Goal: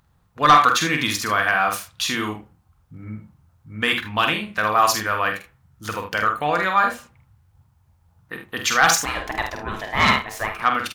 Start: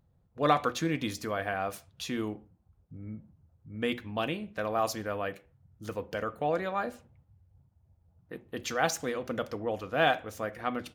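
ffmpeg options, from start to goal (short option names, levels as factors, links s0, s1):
-filter_complex "[0:a]lowshelf=f=790:t=q:w=1.5:g=-9.5,aecho=1:1:47|77:0.501|0.282,asplit=2[s0][s1];[s1]aeval=exprs='0.251*sin(PI/2*2*val(0)/0.251)':c=same,volume=0.631[s2];[s0][s2]amix=inputs=2:normalize=0,asettb=1/sr,asplit=3[s3][s4][s5];[s3]atrim=end=9.054[s6];[s4]atrim=start=9.05:end=10.62,asetpts=PTS-STARTPTS,afade=t=in:d=0.004:c=qsin,afade=t=out:st=1.566:d=0.004:c=qsin,aeval=exprs='val(0)*sin(2*PI*550*n/s)':c=same[s7];[s5]atrim=start=10.616[s8];[s6][s7]acrossfade=d=0.004:c1=hsin:c2=qsin[s9];[s9][s8]acrossfade=d=0.004:c1=qsin:c2=hsin,volume=1.78"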